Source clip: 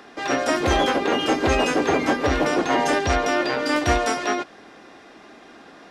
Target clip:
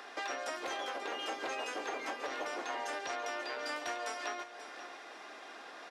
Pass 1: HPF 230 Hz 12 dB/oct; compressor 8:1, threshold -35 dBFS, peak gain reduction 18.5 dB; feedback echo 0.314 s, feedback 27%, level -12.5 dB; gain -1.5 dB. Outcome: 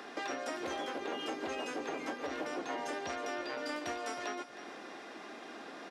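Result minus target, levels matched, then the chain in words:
echo 0.222 s early; 250 Hz band +7.5 dB
HPF 570 Hz 12 dB/oct; compressor 8:1, threshold -35 dBFS, peak gain reduction 17 dB; feedback echo 0.536 s, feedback 27%, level -12.5 dB; gain -1.5 dB

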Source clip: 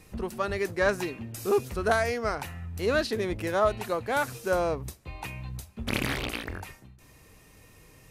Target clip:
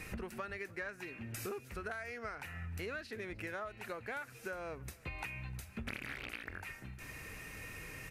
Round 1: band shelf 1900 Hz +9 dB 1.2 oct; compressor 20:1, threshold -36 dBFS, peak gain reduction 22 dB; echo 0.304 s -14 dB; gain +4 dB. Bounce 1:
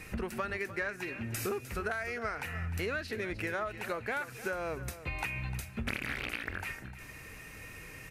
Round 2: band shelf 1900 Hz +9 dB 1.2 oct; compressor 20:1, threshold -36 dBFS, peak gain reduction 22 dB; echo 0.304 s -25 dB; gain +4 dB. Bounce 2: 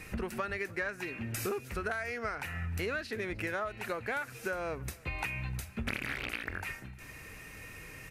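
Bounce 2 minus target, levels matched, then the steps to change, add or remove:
compressor: peak gain reduction -7 dB
change: compressor 20:1, threshold -43.5 dBFS, peak gain reduction 29 dB

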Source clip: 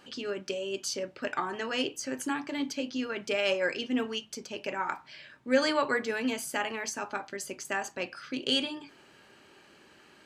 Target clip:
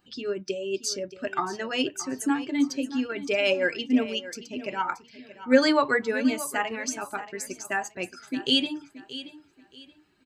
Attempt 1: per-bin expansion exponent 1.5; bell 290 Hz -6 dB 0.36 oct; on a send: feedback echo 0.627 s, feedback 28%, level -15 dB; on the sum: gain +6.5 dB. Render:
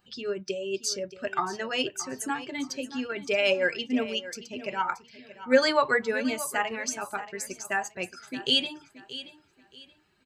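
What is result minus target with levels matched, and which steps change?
250 Hz band -5.0 dB
change: bell 290 Hz +5.5 dB 0.36 oct

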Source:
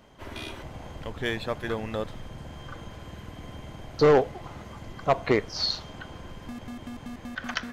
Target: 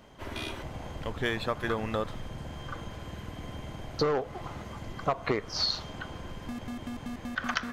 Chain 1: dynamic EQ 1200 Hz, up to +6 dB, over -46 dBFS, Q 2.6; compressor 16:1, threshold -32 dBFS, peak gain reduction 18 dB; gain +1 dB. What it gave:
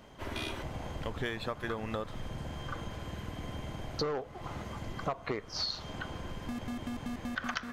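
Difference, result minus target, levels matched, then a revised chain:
compressor: peak gain reduction +6.5 dB
dynamic EQ 1200 Hz, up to +6 dB, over -46 dBFS, Q 2.6; compressor 16:1, threshold -25 dBFS, peak gain reduction 11.5 dB; gain +1 dB

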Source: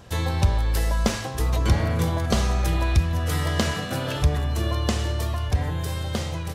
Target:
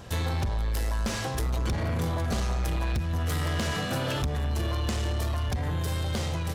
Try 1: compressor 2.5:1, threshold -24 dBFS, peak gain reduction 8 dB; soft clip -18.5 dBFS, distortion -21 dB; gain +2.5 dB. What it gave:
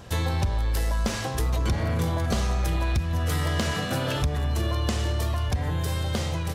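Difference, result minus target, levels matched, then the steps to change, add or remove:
soft clip: distortion -9 dB
change: soft clip -26 dBFS, distortion -12 dB

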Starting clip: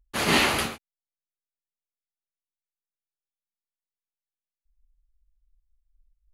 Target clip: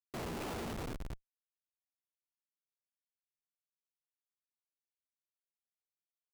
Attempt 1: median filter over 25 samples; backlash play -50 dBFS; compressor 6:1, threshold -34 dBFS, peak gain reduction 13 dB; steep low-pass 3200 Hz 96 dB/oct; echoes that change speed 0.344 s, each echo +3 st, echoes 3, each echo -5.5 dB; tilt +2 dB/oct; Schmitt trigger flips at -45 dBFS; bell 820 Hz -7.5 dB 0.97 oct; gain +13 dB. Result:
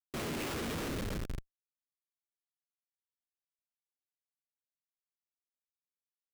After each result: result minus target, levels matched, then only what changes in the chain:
compressor: peak gain reduction -5 dB; 1000 Hz band -2.5 dB
change: compressor 6:1, threshold -40 dBFS, peak gain reduction 18 dB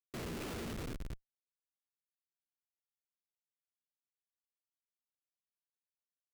1000 Hz band -4.0 dB
remove: bell 820 Hz -7.5 dB 0.97 oct

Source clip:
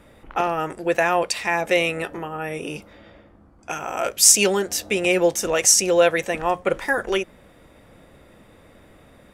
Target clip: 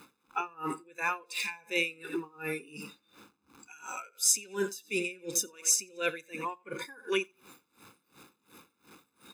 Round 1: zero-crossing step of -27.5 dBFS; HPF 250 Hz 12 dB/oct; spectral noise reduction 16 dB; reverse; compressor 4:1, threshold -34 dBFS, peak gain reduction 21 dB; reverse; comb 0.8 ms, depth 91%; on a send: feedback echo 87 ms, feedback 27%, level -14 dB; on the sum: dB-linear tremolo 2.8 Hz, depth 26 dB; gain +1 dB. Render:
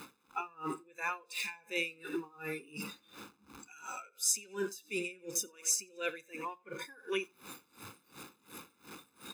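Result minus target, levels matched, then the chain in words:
compressor: peak gain reduction +5.5 dB; zero-crossing step: distortion +6 dB
zero-crossing step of -34 dBFS; HPF 250 Hz 12 dB/oct; spectral noise reduction 16 dB; reverse; compressor 4:1, threshold -27 dBFS, peak gain reduction 15.5 dB; reverse; comb 0.8 ms, depth 91%; on a send: feedback echo 87 ms, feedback 27%, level -14 dB; on the sum: dB-linear tremolo 2.8 Hz, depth 26 dB; gain +1 dB

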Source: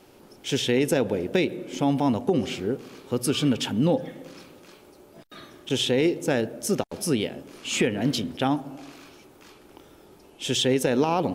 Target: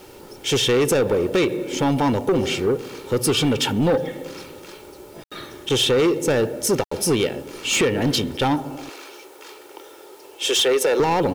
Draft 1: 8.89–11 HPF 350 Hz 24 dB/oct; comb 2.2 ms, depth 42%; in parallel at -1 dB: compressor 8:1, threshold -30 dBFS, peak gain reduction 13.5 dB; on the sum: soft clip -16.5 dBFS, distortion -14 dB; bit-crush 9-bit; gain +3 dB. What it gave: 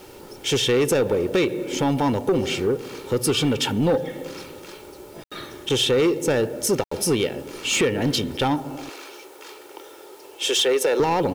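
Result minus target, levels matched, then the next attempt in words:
compressor: peak gain reduction +9.5 dB
8.89–11 HPF 350 Hz 24 dB/oct; comb 2.2 ms, depth 42%; in parallel at -1 dB: compressor 8:1, threshold -19 dBFS, peak gain reduction 4 dB; on the sum: soft clip -16.5 dBFS, distortion -11 dB; bit-crush 9-bit; gain +3 dB

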